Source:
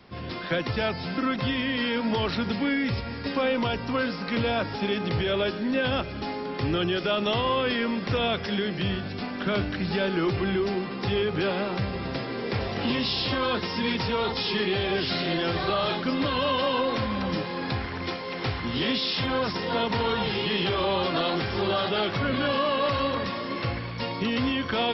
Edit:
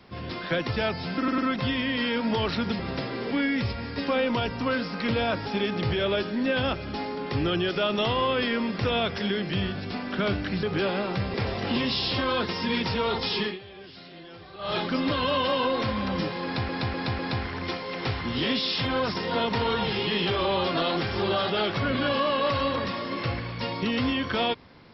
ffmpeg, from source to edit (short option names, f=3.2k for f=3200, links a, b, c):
-filter_complex "[0:a]asplit=12[a][b][c][d][e][f][g][h][i][j][k][l];[a]atrim=end=1.282[m];[b]atrim=start=1.178:end=1.282[n];[c]atrim=start=1.178:end=2.592[o];[d]atrim=start=11.958:end=12.482[p];[e]atrim=start=2.588:end=9.912[q];[f]atrim=start=11.248:end=11.962[r];[g]atrim=start=12.478:end=14.73,asetpts=PTS-STARTPTS,afade=t=out:st=2.062:d=0.19:silence=0.11885[s];[h]atrim=start=14.73:end=15.72,asetpts=PTS-STARTPTS,volume=-18.5dB[t];[i]atrim=start=15.72:end=17.832,asetpts=PTS-STARTPTS,afade=t=in:d=0.19:silence=0.11885[u];[j]atrim=start=17.578:end=17.832[v];[k]atrim=start=17.578:end=17.832[w];[l]atrim=start=17.578[x];[m][n]acrossfade=d=0.004:c1=hsin:c2=hsin[y];[y][o]acrossfade=d=0.004:c1=hsin:c2=hsin[z];[z][p]acrossfade=d=0.004:c1=hsin:c2=hsin[aa];[aa][q]acrossfade=d=0.004:c1=hsin:c2=hsin[ab];[ab][r]acrossfade=d=0.004:c1=hsin:c2=hsin[ac];[s][t][u]concat=n=3:v=0:a=1[ad];[ac][ad]acrossfade=d=0.004:c1=hsin:c2=hsin[ae];[ae][v]acrossfade=d=0.004:c1=hsin:c2=hsin[af];[af][w]acrossfade=d=0.004:c1=hsin:c2=hsin[ag];[ag][x]acrossfade=d=0.004:c1=hsin:c2=hsin"